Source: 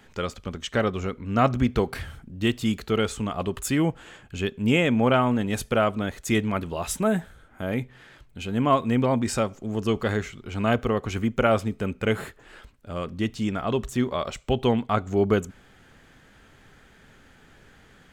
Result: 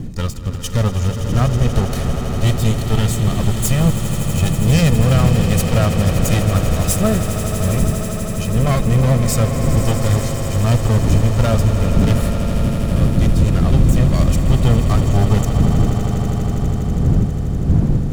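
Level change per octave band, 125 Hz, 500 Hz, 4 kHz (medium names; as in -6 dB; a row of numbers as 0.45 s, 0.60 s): +16.5 dB, +3.0 dB, +6.5 dB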